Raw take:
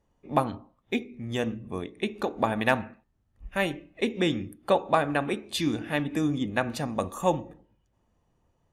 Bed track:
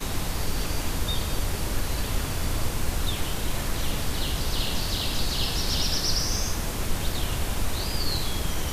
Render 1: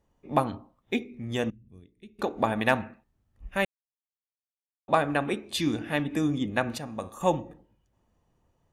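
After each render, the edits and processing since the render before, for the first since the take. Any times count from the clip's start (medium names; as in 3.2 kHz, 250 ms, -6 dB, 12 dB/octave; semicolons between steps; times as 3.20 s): 1.50–2.19 s: amplifier tone stack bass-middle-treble 10-0-1; 3.65–4.88 s: mute; 6.78–7.21 s: feedback comb 110 Hz, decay 0.62 s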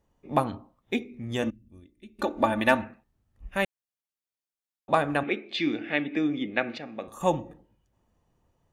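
1.42–2.85 s: comb 3.4 ms; 5.23–7.08 s: cabinet simulation 240–4300 Hz, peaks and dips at 330 Hz +3 dB, 1 kHz -10 dB, 2.2 kHz +9 dB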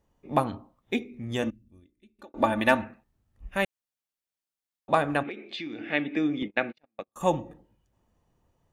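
1.38–2.34 s: fade out; 5.22–5.92 s: compression 12:1, threshold -32 dBFS; 6.42–7.16 s: gate -35 dBFS, range -42 dB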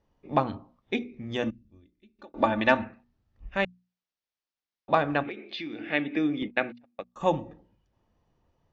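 steep low-pass 5.8 kHz 36 dB/octave; hum notches 60/120/180/240 Hz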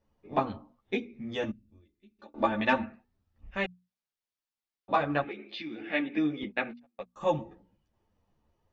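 three-phase chorus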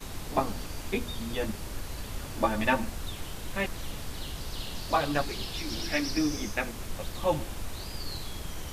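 add bed track -10 dB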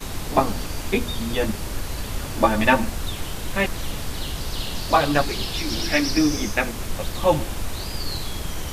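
trim +8.5 dB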